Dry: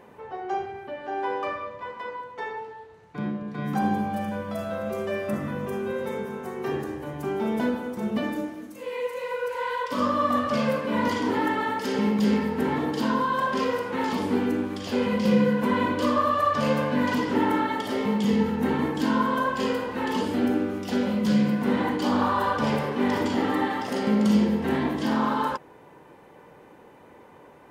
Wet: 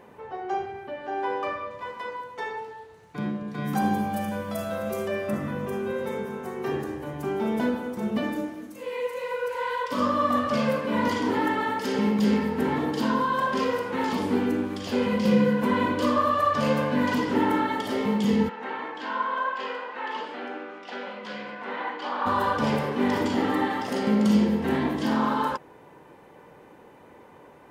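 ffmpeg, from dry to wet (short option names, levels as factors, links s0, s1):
-filter_complex "[0:a]asettb=1/sr,asplit=3[s0][s1][s2];[s0]atrim=end=1.704[s3];[s1]atrim=start=1.7:end=5.08,asetpts=PTS-STARTPTS,afade=t=in:d=0.004:c=qsin,afade=t=out:st=3.376:d=0.004:c=qsin,highshelf=f=5200:g=10[s4];[s2]atrim=start=5.076[s5];[s3][s4]acrossfade=d=0.004:c1=hsin:c2=qsin[s6];[s6][s5]acrossfade=d=0.004:c1=qsin:c2=hsin,asplit=3[s7][s8][s9];[s7]afade=t=out:st=18.48:d=0.02[s10];[s8]highpass=730,lowpass=2900,afade=t=in:st=18.48:d=0.02,afade=t=out:st=22.25:d=0.02[s11];[s9]afade=t=in:st=22.25:d=0.02[s12];[s10][s11][s12]amix=inputs=3:normalize=0"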